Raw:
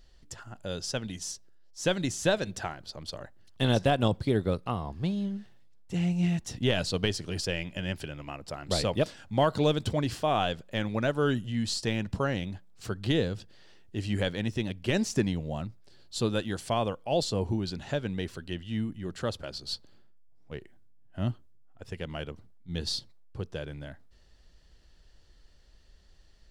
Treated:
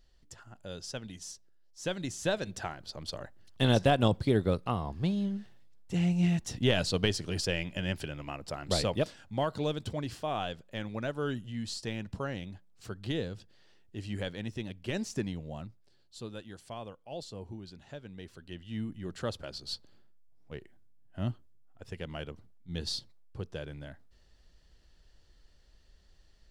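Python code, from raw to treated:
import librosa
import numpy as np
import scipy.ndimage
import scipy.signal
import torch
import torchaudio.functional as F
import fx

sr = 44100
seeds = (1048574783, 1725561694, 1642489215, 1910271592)

y = fx.gain(x, sr, db=fx.line((1.92, -7.0), (3.05, 0.0), (8.65, 0.0), (9.49, -7.0), (15.66, -7.0), (16.17, -14.0), (18.09, -14.0), (18.94, -3.0)))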